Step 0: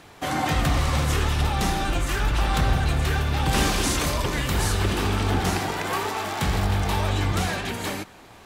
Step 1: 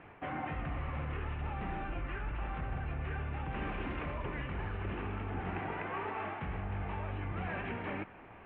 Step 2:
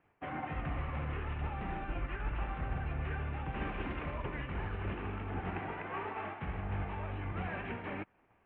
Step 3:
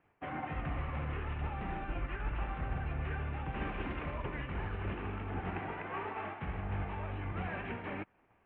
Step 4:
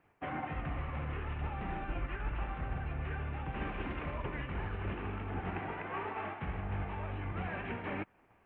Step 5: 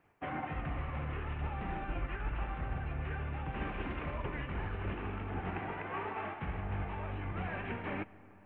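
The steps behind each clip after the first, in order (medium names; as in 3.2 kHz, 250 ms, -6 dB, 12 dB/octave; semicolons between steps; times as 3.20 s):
steep low-pass 2.7 kHz 48 dB/octave; reverse; compression 6:1, threshold -30 dBFS, peak gain reduction 13.5 dB; reverse; trim -5 dB
in parallel at +2 dB: peak limiter -36.5 dBFS, peak gain reduction 9.5 dB; on the sum: upward expansion 2.5:1, over -48 dBFS
no audible change
gain riding within 3 dB 0.5 s
reverberation RT60 3.8 s, pre-delay 55 ms, DRR 19 dB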